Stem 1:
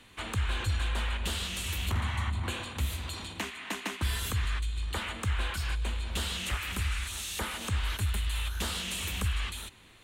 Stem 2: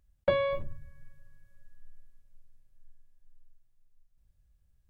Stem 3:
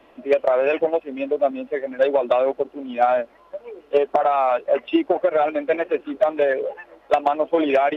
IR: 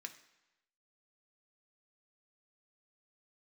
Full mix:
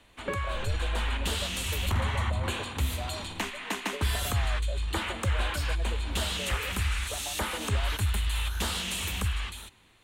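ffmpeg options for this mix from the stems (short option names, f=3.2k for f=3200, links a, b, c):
-filter_complex "[0:a]equalizer=f=850:t=o:w=0.57:g=3,dynaudnorm=f=120:g=13:m=7.5dB,volume=-5dB[a];[1:a]asplit=2[b][c];[c]afreqshift=-0.77[d];[b][d]amix=inputs=2:normalize=1,volume=1dB[e];[2:a]acompressor=threshold=-23dB:ratio=6,volume=-15.5dB[f];[a][e][f]amix=inputs=3:normalize=0"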